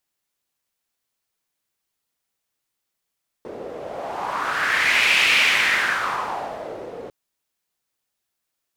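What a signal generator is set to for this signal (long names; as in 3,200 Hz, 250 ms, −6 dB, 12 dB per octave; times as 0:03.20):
wind from filtered noise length 3.65 s, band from 460 Hz, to 2,500 Hz, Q 3.5, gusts 1, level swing 18 dB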